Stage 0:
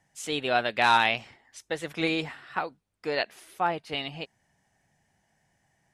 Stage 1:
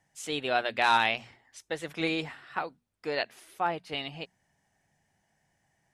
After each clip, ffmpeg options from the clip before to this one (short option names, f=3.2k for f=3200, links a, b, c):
-af "bandreject=f=60:t=h:w=6,bandreject=f=120:t=h:w=6,bandreject=f=180:t=h:w=6,bandreject=f=240:t=h:w=6,volume=-2.5dB"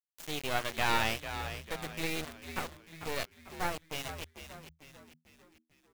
-filter_complex "[0:a]asplit=2[a][b];[b]adelay=23,volume=-12dB[c];[a][c]amix=inputs=2:normalize=0,acrusher=bits=3:dc=4:mix=0:aa=0.000001,asplit=2[d][e];[e]asplit=5[f][g][h][i][j];[f]adelay=446,afreqshift=-80,volume=-10dB[k];[g]adelay=892,afreqshift=-160,volume=-16.7dB[l];[h]adelay=1338,afreqshift=-240,volume=-23.5dB[m];[i]adelay=1784,afreqshift=-320,volume=-30.2dB[n];[j]adelay=2230,afreqshift=-400,volume=-37dB[o];[k][l][m][n][o]amix=inputs=5:normalize=0[p];[d][p]amix=inputs=2:normalize=0,volume=-2.5dB"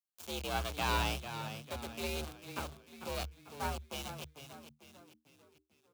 -af "acrusher=bits=8:mode=log:mix=0:aa=0.000001,afreqshift=68,equalizer=f=1.9k:w=4.3:g=-12,volume=-2.5dB"